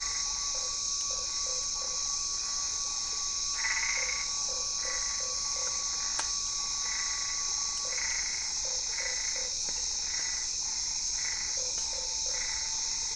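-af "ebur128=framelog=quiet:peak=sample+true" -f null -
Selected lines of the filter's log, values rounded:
Integrated loudness:
  I:         -29.5 LUFS
  Threshold: -39.4 LUFS
Loudness range:
  LRA:         0.6 LU
  Threshold: -49.4 LUFS
  LRA low:   -29.7 LUFS
  LRA high:  -29.1 LUFS
Sample peak:
  Peak:      -14.9 dBFS
True peak:
  Peak:      -14.6 dBFS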